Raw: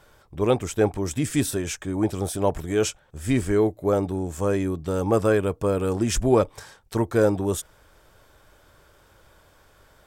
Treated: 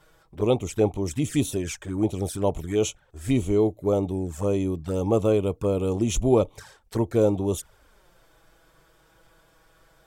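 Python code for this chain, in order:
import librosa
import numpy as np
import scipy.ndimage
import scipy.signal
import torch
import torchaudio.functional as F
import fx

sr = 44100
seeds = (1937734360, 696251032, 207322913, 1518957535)

y = fx.env_flanger(x, sr, rest_ms=6.7, full_db=-21.0)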